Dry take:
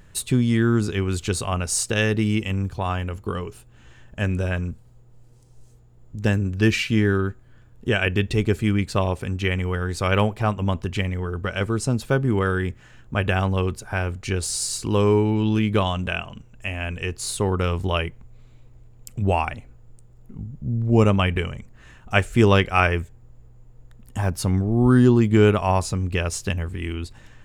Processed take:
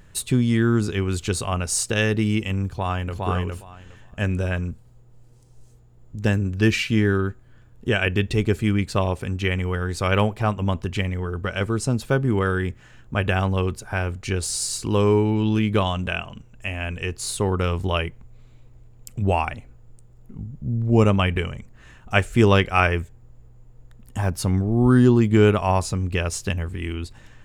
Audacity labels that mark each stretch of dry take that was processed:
2.660000	3.210000	echo throw 0.41 s, feedback 15%, level -2 dB

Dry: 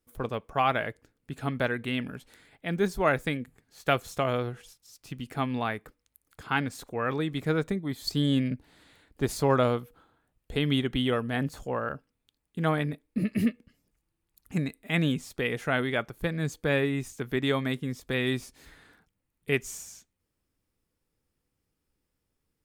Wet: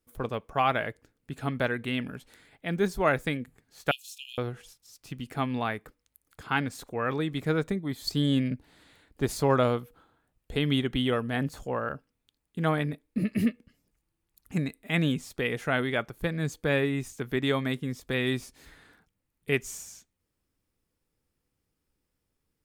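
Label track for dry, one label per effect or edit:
3.910000	4.380000	brick-wall FIR high-pass 2400 Hz

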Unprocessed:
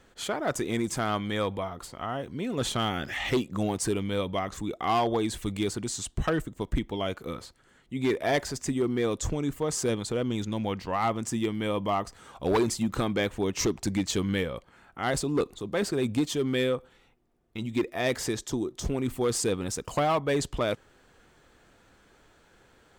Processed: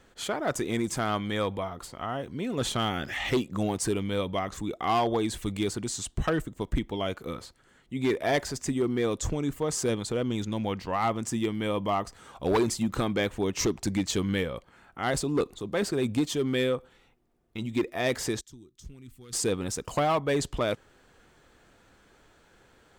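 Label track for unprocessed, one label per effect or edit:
18.410000	19.330000	passive tone stack bass-middle-treble 6-0-2

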